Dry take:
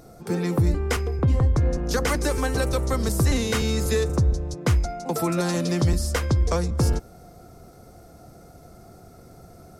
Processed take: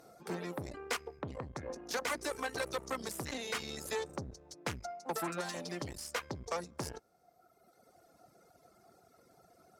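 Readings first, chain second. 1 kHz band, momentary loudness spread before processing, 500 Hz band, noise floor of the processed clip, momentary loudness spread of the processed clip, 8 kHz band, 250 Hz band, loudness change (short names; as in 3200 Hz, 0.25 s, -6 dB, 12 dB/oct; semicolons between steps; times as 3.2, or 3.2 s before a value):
-9.0 dB, 4 LU, -13.5 dB, -68 dBFS, 7 LU, -11.5 dB, -18.0 dB, -16.0 dB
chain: reverb removal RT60 1.7 s; tube stage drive 23 dB, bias 0.8; vocal rider 0.5 s; HPF 630 Hz 6 dB/oct; high shelf 5000 Hz -5 dB; gain -2 dB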